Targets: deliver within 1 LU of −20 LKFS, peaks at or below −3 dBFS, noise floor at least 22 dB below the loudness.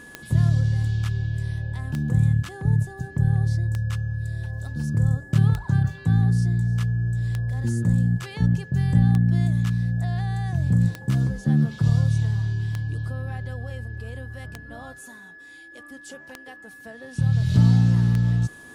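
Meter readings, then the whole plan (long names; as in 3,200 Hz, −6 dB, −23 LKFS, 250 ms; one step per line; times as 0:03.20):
number of clicks 11; interfering tone 1,700 Hz; level of the tone −43 dBFS; integrated loudness −23.0 LKFS; sample peak −6.5 dBFS; target loudness −20.0 LKFS
→ click removal
notch filter 1,700 Hz, Q 30
level +3 dB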